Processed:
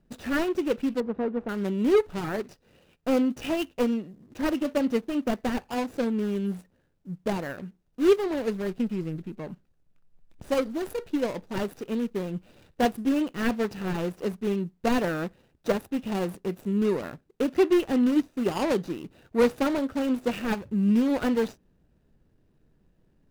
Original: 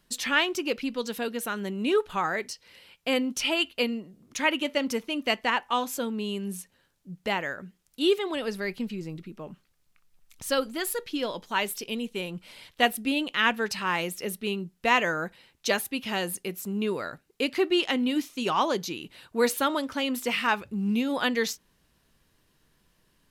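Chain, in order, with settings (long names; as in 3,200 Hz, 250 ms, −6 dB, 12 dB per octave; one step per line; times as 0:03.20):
running median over 41 samples
0:01.00–0:01.49: low-pass filter 1,400 Hz 12 dB per octave
level +5 dB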